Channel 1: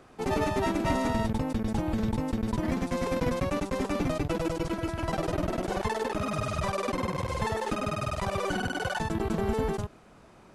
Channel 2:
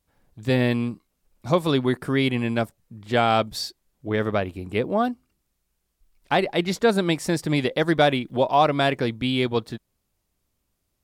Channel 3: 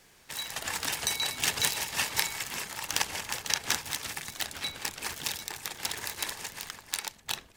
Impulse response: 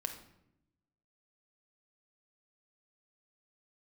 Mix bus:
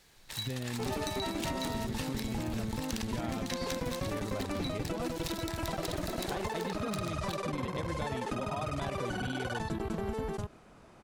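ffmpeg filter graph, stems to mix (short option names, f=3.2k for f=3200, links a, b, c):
-filter_complex "[0:a]adelay=600,volume=-2dB[a];[1:a]lowpass=3.7k,lowshelf=f=180:g=10.5,alimiter=limit=-15.5dB:level=0:latency=1,volume=-7dB[b];[2:a]volume=-4.5dB[c];[b][c]amix=inputs=2:normalize=0,equalizer=f=4k:t=o:w=0.36:g=6.5,acompressor=threshold=-31dB:ratio=6,volume=0dB[d];[a][d]amix=inputs=2:normalize=0,acompressor=threshold=-31dB:ratio=6"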